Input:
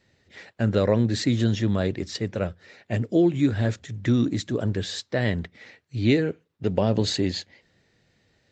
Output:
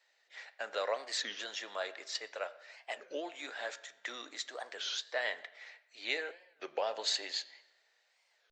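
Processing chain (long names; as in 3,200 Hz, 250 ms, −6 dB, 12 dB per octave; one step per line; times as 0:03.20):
high-pass filter 660 Hz 24 dB per octave
on a send at −12 dB: convolution reverb RT60 1.0 s, pre-delay 5 ms
on the sum: wow of a warped record 33 1/3 rpm, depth 250 cents
level −4.5 dB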